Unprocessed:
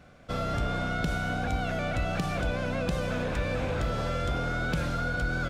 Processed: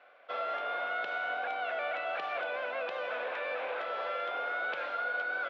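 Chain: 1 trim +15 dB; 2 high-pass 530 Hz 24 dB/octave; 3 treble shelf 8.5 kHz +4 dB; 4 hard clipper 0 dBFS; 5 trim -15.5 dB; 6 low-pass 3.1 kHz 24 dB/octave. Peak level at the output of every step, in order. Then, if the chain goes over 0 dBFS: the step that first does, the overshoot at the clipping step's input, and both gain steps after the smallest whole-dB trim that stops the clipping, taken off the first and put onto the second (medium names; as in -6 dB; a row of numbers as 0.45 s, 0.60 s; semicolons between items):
-4.5 dBFS, -5.5 dBFS, -4.5 dBFS, -4.5 dBFS, -20.0 dBFS, -24.0 dBFS; nothing clips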